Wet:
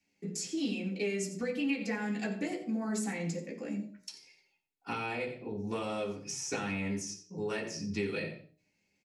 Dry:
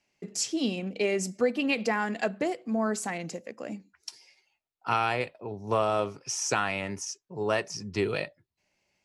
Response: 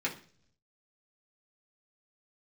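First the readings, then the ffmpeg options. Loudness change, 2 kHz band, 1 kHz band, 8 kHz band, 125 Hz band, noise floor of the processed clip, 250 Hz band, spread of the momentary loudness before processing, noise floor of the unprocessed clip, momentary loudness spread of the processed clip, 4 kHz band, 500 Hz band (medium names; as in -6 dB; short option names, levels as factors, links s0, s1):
-6.0 dB, -6.5 dB, -11.5 dB, -6.0 dB, -2.5 dB, -78 dBFS, -2.0 dB, 13 LU, -81 dBFS, 7 LU, -7.0 dB, -7.5 dB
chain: -filter_complex "[0:a]aecho=1:1:88:0.188[s0];[1:a]atrim=start_sample=2205,afade=t=out:st=0.31:d=0.01,atrim=end_sample=14112[s1];[s0][s1]afir=irnorm=-1:irlink=0,acrossover=split=900|1900[s2][s3][s4];[s2]acompressor=threshold=0.0447:ratio=4[s5];[s3]acompressor=threshold=0.02:ratio=4[s6];[s4]acompressor=threshold=0.0224:ratio=4[s7];[s5][s6][s7]amix=inputs=3:normalize=0,equalizer=f=1200:t=o:w=2.7:g=-10,bandreject=f=61.49:t=h:w=4,bandreject=f=122.98:t=h:w=4,bandreject=f=184.47:t=h:w=4,bandreject=f=245.96:t=h:w=4,bandreject=f=307.45:t=h:w=4,bandreject=f=368.94:t=h:w=4,bandreject=f=430.43:t=h:w=4,bandreject=f=491.92:t=h:w=4,bandreject=f=553.41:t=h:w=4,bandreject=f=614.9:t=h:w=4,bandreject=f=676.39:t=h:w=4,bandreject=f=737.88:t=h:w=4,volume=0.794"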